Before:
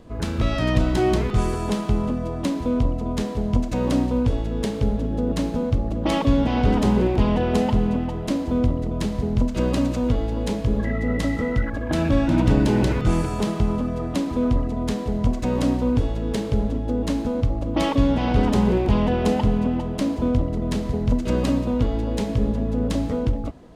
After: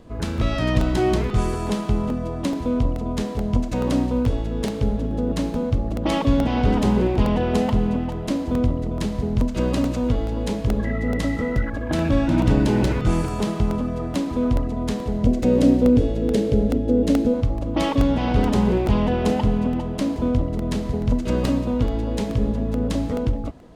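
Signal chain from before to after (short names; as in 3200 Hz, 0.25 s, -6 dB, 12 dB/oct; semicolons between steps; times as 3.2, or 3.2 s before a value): 15.23–17.34 ten-band EQ 250 Hz +5 dB, 500 Hz +8 dB, 1000 Hz -9 dB; crackling interface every 0.43 s, samples 64, repeat, from 0.38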